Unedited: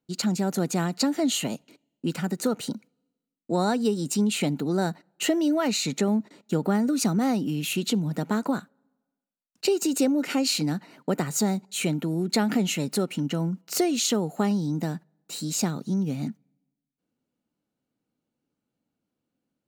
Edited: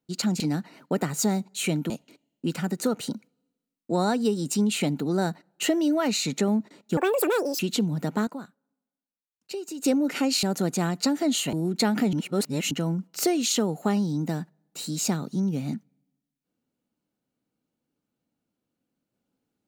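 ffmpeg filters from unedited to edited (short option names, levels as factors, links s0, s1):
-filter_complex "[0:a]asplit=11[s0][s1][s2][s3][s4][s5][s6][s7][s8][s9][s10];[s0]atrim=end=0.402[s11];[s1]atrim=start=10.568:end=12.072[s12];[s2]atrim=start=1.498:end=6.574[s13];[s3]atrim=start=6.57:end=7.73,asetpts=PTS-STARTPTS,asetrate=82467,aresample=44100,atrim=end_sample=27356,asetpts=PTS-STARTPTS[s14];[s4]atrim=start=7.726:end=8.412[s15];[s5]atrim=start=8.408:end=9.982,asetpts=PTS-STARTPTS,volume=0.282[s16];[s6]atrim=start=9.978:end=10.572[s17];[s7]atrim=start=0.398:end=1.502[s18];[s8]atrim=start=12.068:end=12.672[s19];[s9]atrim=start=12.668:end=13.252,asetpts=PTS-STARTPTS,areverse[s20];[s10]atrim=start=13.248[s21];[s11][s12]acrossfade=d=0.004:c1=hsin:c2=hsin[s22];[s22][s13]acrossfade=d=0.004:c1=hsin:c2=hsin[s23];[s23][s14]acrossfade=d=0.004:c1=hsin:c2=hsin[s24];[s24][s15]acrossfade=d=0.004:c1=hsin:c2=hsin[s25];[s25][s16]acrossfade=d=0.004:c1=hsin:c2=hsin[s26];[s26][s17]acrossfade=d=0.004:c1=hsin:c2=hsin[s27];[s27][s18]acrossfade=d=0.004:c1=hsin:c2=hsin[s28];[s28][s19]acrossfade=d=0.004:c1=hsin:c2=hsin[s29];[s29][s20]acrossfade=d=0.004:c1=hsin:c2=hsin[s30];[s30][s21]acrossfade=d=0.004:c1=hsin:c2=hsin"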